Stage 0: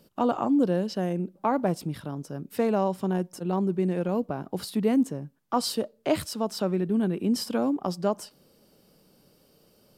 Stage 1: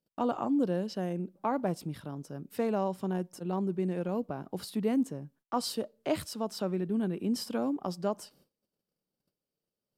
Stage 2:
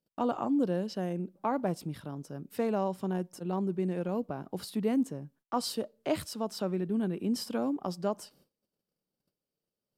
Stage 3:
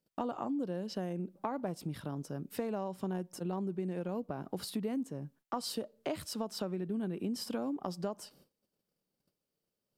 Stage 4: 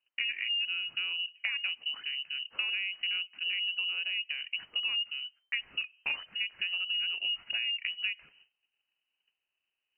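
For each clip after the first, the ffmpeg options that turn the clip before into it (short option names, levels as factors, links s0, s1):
-af "agate=range=0.0562:threshold=0.00158:ratio=16:detection=peak,volume=0.531"
-af anull
-af "acompressor=threshold=0.0178:ratio=6,volume=1.26"
-af "lowpass=f=2600:t=q:w=0.5098,lowpass=f=2600:t=q:w=0.6013,lowpass=f=2600:t=q:w=0.9,lowpass=f=2600:t=q:w=2.563,afreqshift=-3100,volume=1.41"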